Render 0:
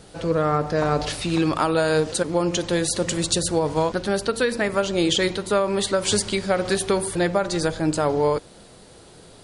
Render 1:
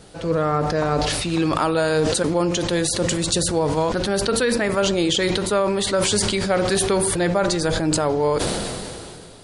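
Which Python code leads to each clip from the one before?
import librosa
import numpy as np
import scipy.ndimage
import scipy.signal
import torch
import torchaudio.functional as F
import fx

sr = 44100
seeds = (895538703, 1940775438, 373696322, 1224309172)

y = fx.sustainer(x, sr, db_per_s=24.0)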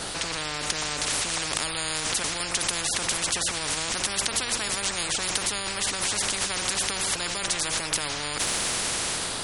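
y = fx.spectral_comp(x, sr, ratio=10.0)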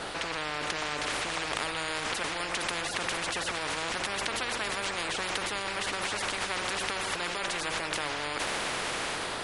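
y = fx.bass_treble(x, sr, bass_db=-7, treble_db=-14)
y = y + 10.0 ** (-10.0 / 20.0) * np.pad(y, (int(461 * sr / 1000.0), 0))[:len(y)]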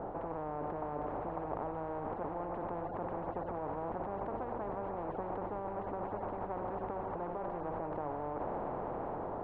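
y = scipy.signal.sosfilt(scipy.signal.cheby1(3, 1.0, 850.0, 'lowpass', fs=sr, output='sos'), x)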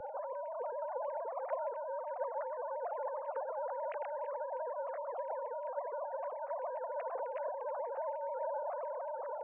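y = fx.sine_speech(x, sr)
y = fx.band_widen(y, sr, depth_pct=70)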